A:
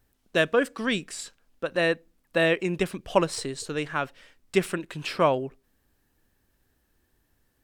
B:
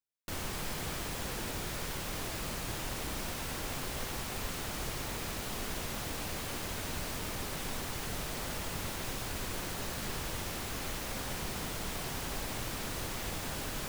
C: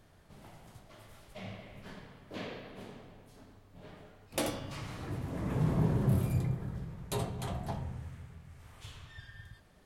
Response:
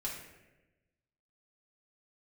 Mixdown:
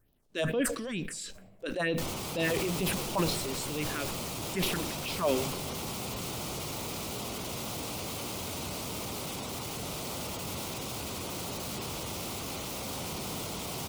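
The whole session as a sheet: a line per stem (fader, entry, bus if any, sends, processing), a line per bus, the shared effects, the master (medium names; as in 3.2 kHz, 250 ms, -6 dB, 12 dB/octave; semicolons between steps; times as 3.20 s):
-4.0 dB, 0.00 s, send -19 dB, phase shifter stages 4, 2.2 Hz, lowest notch 120–1600 Hz; decay stretcher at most 110 dB/s
+3.0 dB, 1.70 s, no send, spectral gate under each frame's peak -30 dB strong; high-pass 89 Hz; peaking EQ 1.7 kHz -14.5 dB 0.42 oct
-13.0 dB, 0.00 s, no send, band-pass filter 300 Hz, Q 0.66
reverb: on, RT60 1.1 s, pre-delay 3 ms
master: transient shaper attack -7 dB, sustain +5 dB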